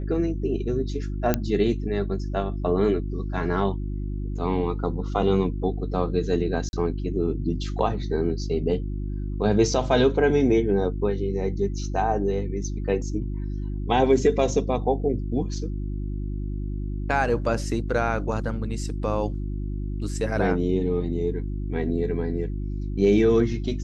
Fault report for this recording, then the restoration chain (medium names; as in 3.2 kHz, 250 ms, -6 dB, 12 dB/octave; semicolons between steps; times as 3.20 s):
hum 50 Hz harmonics 7 -29 dBFS
1.34 s: pop -7 dBFS
6.69–6.73 s: dropout 41 ms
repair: de-click; de-hum 50 Hz, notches 7; interpolate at 6.69 s, 41 ms